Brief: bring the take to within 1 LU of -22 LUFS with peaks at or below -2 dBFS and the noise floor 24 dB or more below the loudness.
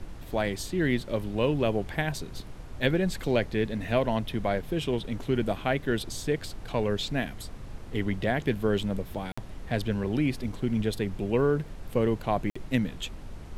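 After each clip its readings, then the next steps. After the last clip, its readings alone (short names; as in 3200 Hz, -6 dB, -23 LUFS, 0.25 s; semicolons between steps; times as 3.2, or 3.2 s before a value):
dropouts 2; longest dropout 55 ms; noise floor -42 dBFS; noise floor target -53 dBFS; loudness -29.0 LUFS; peak -10.0 dBFS; loudness target -22.0 LUFS
-> interpolate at 9.32/12.5, 55 ms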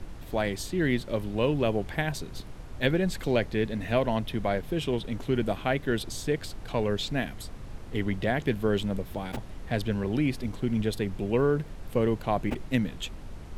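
dropouts 0; noise floor -42 dBFS; noise floor target -53 dBFS
-> noise print and reduce 11 dB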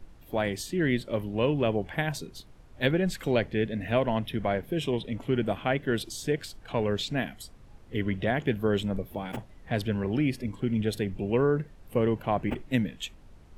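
noise floor -52 dBFS; noise floor target -53 dBFS
-> noise print and reduce 6 dB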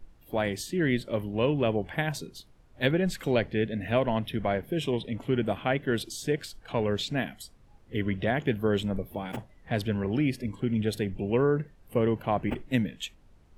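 noise floor -57 dBFS; loudness -29.0 LUFS; peak -10.5 dBFS; loudness target -22.0 LUFS
-> gain +7 dB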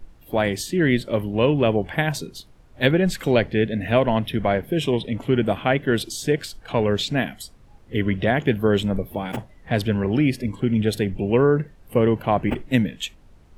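loudness -22.0 LUFS; peak -3.5 dBFS; noise floor -50 dBFS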